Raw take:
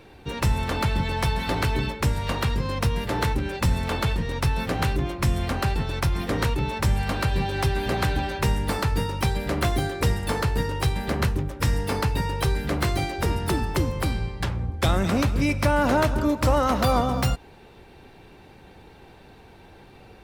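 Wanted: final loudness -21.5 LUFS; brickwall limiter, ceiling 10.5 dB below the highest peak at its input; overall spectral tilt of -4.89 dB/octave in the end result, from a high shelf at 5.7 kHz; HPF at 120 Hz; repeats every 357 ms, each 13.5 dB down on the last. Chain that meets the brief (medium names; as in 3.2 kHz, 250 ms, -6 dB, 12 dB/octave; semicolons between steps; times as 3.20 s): high-pass 120 Hz; treble shelf 5.7 kHz -8.5 dB; peak limiter -20.5 dBFS; feedback delay 357 ms, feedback 21%, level -13.5 dB; trim +9 dB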